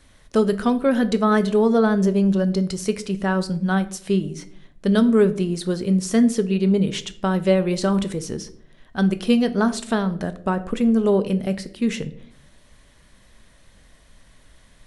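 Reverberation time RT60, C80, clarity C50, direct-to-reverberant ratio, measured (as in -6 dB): 0.60 s, 19.5 dB, 16.5 dB, 10.5 dB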